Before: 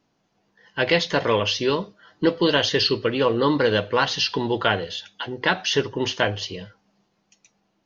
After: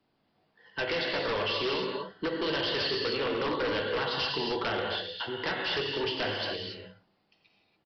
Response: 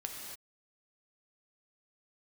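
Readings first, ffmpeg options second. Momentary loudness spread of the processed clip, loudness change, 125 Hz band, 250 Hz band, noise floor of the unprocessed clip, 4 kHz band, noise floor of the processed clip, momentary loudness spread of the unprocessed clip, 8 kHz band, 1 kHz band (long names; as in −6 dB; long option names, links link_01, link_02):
6 LU, −8.5 dB, −12.5 dB, −11.0 dB, −70 dBFS, −6.5 dB, −74 dBFS, 12 LU, can't be measured, −8.0 dB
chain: -filter_complex "[0:a]acrossover=split=160|370[link_01][link_02][link_03];[link_01]acompressor=threshold=-44dB:ratio=4[link_04];[link_02]acompressor=threshold=-37dB:ratio=4[link_05];[link_03]acompressor=threshold=-23dB:ratio=4[link_06];[link_04][link_05][link_06]amix=inputs=3:normalize=0,bandreject=frequency=60:width_type=h:width=6,bandreject=frequency=120:width_type=h:width=6,bandreject=frequency=180:width_type=h:width=6[link_07];[1:a]atrim=start_sample=2205[link_08];[link_07][link_08]afir=irnorm=-1:irlink=0,aresample=11025,aeval=exprs='0.0794*(abs(mod(val(0)/0.0794+3,4)-2)-1)':channel_layout=same,aresample=44100,volume=-2dB"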